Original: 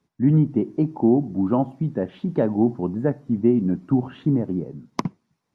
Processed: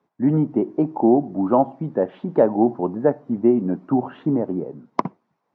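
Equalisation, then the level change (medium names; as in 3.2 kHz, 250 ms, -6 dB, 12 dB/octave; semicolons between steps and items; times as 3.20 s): band-pass filter 730 Hz, Q 1; +8.5 dB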